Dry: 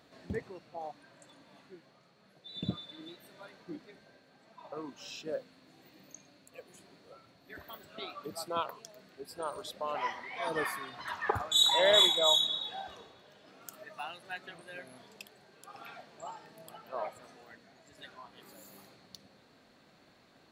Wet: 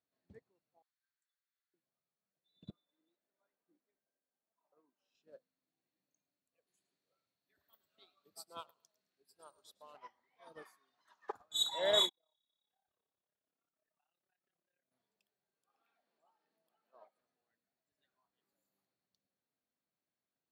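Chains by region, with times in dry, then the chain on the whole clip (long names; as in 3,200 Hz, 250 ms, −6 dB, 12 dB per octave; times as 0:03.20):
0:00.82–0:01.74: Butterworth high-pass 1,300 Hz 48 dB per octave + parametric band 2,700 Hz −9 dB 0.34 octaves
0:02.70–0:05.15: high-pass filter 250 Hz + high-shelf EQ 2,600 Hz −11 dB
0:06.67–0:09.97: high-shelf EQ 2,500 Hz +11 dB + repeating echo 108 ms, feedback 28%, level −13 dB
0:10.62–0:11.40: high-pass filter 230 Hz + parametric band 6,400 Hz +9 dB 0.79 octaves
0:12.09–0:14.92: downward compressor 2.5 to 1, threshold −52 dBFS + high-frequency loss of the air 120 metres + amplitude modulation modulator 34 Hz, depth 75%
0:15.70–0:17.21: high-pass filter 190 Hz 24 dB per octave + parametric band 7,500 Hz −11.5 dB 0.24 octaves + upward compression, threshold −44 dBFS
whole clip: dynamic equaliser 2,200 Hz, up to −5 dB, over −49 dBFS, Q 1.4; expander for the loud parts 2.5 to 1, over −42 dBFS; level −4 dB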